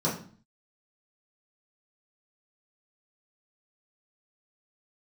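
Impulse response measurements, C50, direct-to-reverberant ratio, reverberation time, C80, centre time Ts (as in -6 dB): 7.0 dB, -8.0 dB, 0.45 s, 12.0 dB, 29 ms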